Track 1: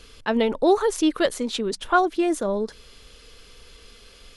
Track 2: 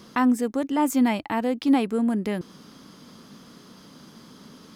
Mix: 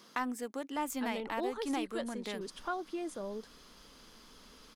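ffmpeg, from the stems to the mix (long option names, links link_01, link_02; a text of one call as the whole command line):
ffmpeg -i stem1.wav -i stem2.wav -filter_complex "[0:a]adelay=750,volume=-14dB[link_01];[1:a]highpass=frequency=680:poles=1,aeval=exprs='0.251*(cos(1*acos(clip(val(0)/0.251,-1,1)))-cos(1*PI/2))+0.01*(cos(7*acos(clip(val(0)/0.251,-1,1)))-cos(7*PI/2))':channel_layout=same,volume=-3dB[link_02];[link_01][link_02]amix=inputs=2:normalize=0,acompressor=threshold=-39dB:ratio=1.5" out.wav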